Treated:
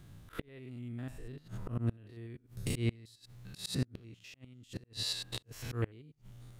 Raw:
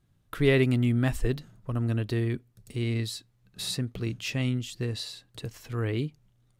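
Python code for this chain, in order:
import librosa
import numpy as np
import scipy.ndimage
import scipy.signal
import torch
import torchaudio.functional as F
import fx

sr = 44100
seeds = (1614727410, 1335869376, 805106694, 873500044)

y = fx.spec_steps(x, sr, hold_ms=100)
y = fx.auto_swell(y, sr, attack_ms=662.0)
y = fx.gate_flip(y, sr, shuts_db=-36.0, range_db=-30)
y = y * 10.0 ** (15.0 / 20.0)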